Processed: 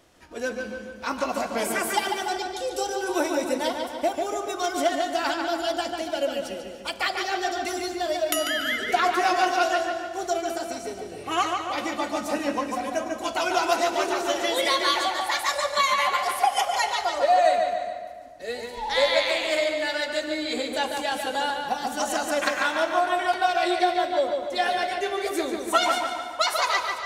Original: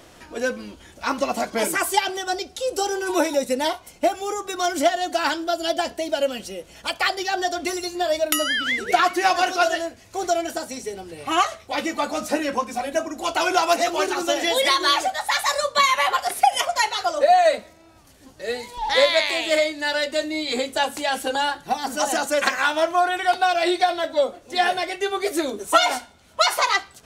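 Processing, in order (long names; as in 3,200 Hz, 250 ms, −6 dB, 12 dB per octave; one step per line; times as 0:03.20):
noise gate −43 dBFS, range −6 dB
on a send: feedback echo with a low-pass in the loop 145 ms, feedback 56%, low-pass 4,000 Hz, level −4 dB
on the sum: reverb whose tail is shaped and stops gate 430 ms flat, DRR 12 dB
level −5 dB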